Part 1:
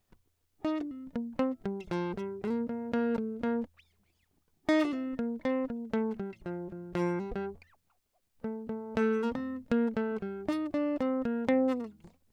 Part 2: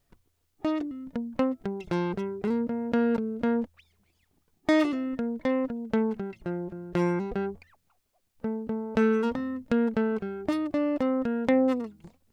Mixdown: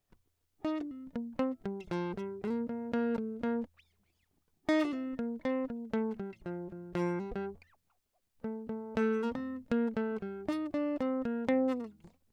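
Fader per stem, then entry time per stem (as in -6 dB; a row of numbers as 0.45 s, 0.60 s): -6.0 dB, -16.0 dB; 0.00 s, 0.00 s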